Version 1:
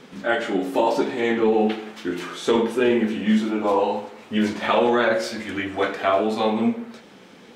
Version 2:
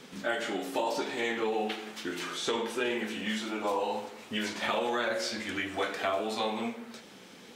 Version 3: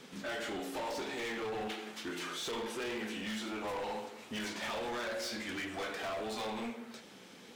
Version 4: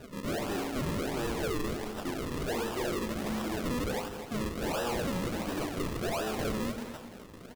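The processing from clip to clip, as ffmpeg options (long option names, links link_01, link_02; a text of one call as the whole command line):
ffmpeg -i in.wav -filter_complex "[0:a]highshelf=frequency=3600:gain=10,acrossover=split=530|6700[link_01][link_02][link_03];[link_01]acompressor=threshold=-31dB:ratio=4[link_04];[link_02]acompressor=threshold=-24dB:ratio=4[link_05];[link_03]acompressor=threshold=-46dB:ratio=4[link_06];[link_04][link_05][link_06]amix=inputs=3:normalize=0,volume=-5.5dB" out.wav
ffmpeg -i in.wav -af "asoftclip=type=hard:threshold=-32.5dB,volume=-3dB" out.wav
ffmpeg -i in.wav -filter_complex "[0:a]acrusher=samples=40:mix=1:aa=0.000001:lfo=1:lforange=40:lforate=1.4,asplit=2[link_01][link_02];[link_02]aecho=0:1:253|395:0.266|0.112[link_03];[link_01][link_03]amix=inputs=2:normalize=0,volume=5.5dB" out.wav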